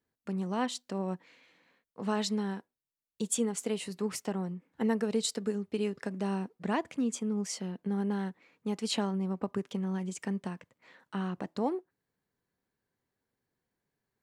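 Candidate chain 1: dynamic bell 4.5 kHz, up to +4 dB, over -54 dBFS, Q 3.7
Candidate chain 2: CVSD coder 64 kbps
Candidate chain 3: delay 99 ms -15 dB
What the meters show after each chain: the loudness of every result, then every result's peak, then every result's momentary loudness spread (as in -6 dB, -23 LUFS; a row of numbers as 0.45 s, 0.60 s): -34.0 LUFS, -34.0 LUFS, -34.0 LUFS; -17.0 dBFS, -18.0 dBFS, -17.0 dBFS; 8 LU, 8 LU, 8 LU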